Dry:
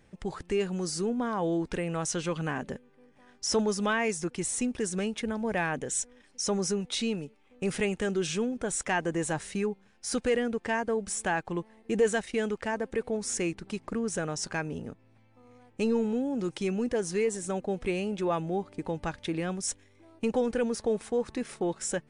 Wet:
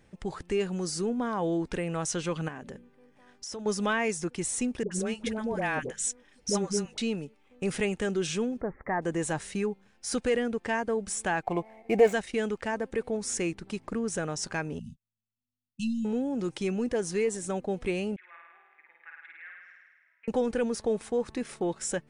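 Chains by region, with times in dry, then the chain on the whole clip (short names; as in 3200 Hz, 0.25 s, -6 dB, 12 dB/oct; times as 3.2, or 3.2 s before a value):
2.48–3.66 notches 60/120/180/240/300/360 Hz + compressor 4:1, threshold -38 dBFS
4.83–6.98 de-hum 53.13 Hz, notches 4 + dispersion highs, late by 85 ms, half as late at 640 Hz
8.61–9.02 steep low-pass 2000 Hz 72 dB/oct + bell 1500 Hz -13 dB 0.21 oct
11.43–12.13 median filter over 9 samples + small resonant body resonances 710/2200 Hz, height 17 dB, ringing for 20 ms
14.79–16.05 gate -48 dBFS, range -31 dB + brick-wall FIR band-stop 240–2600 Hz + doubler 13 ms -11.5 dB
18.16–20.28 Butterworth band-pass 1900 Hz, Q 3 + air absorption 220 m + flutter echo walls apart 9.1 m, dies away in 1.4 s
whole clip: dry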